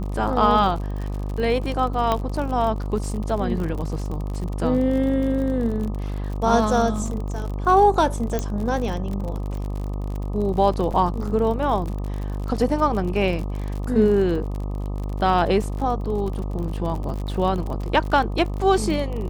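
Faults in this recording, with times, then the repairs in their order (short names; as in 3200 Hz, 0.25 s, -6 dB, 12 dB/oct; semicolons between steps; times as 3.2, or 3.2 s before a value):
buzz 50 Hz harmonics 25 -27 dBFS
crackle 51/s -29 dBFS
2.12 pop -9 dBFS
8.39 pop -11 dBFS
10.92–10.93 gap 6 ms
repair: de-click; de-hum 50 Hz, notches 25; interpolate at 10.92, 6 ms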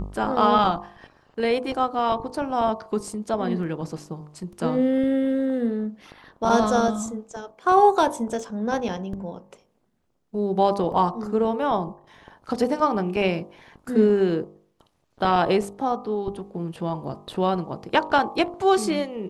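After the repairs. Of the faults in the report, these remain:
8.39 pop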